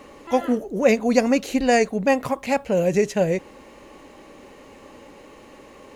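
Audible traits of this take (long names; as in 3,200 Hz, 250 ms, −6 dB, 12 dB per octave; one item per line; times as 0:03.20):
background noise floor −47 dBFS
spectral slope −5.0 dB per octave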